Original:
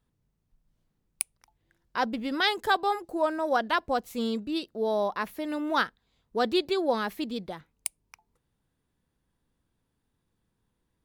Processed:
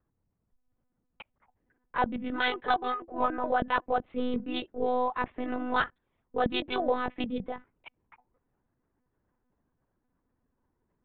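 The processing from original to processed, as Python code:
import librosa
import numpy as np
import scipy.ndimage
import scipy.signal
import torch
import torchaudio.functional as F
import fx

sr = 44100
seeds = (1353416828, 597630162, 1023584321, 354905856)

p1 = fx.wiener(x, sr, points=9)
p2 = fx.env_lowpass(p1, sr, base_hz=1800.0, full_db=-26.5)
p3 = fx.lpc_monotone(p2, sr, seeds[0], pitch_hz=250.0, order=16)
p4 = fx.low_shelf(p3, sr, hz=220.0, db=-6.0)
p5 = fx.rider(p4, sr, range_db=5, speed_s=0.5)
p6 = p4 + (p5 * 10.0 ** (1.0 / 20.0))
p7 = fx.air_absorb(p6, sr, metres=170.0)
y = p7 * 10.0 ** (-5.5 / 20.0)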